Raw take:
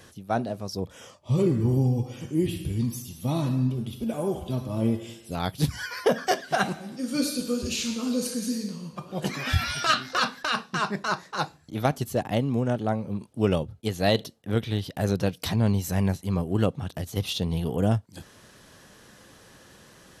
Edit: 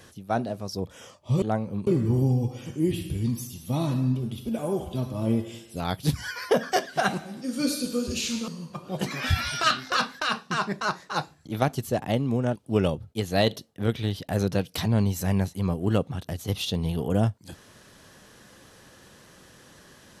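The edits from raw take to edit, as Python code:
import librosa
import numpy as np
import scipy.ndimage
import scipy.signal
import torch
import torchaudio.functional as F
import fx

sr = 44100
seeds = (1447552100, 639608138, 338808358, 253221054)

y = fx.edit(x, sr, fx.cut(start_s=8.03, length_s=0.68),
    fx.move(start_s=12.79, length_s=0.45, to_s=1.42), tone=tone)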